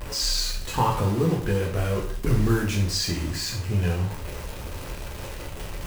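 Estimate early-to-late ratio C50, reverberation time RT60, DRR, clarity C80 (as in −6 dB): 6.5 dB, 0.50 s, −2.0 dB, 10.0 dB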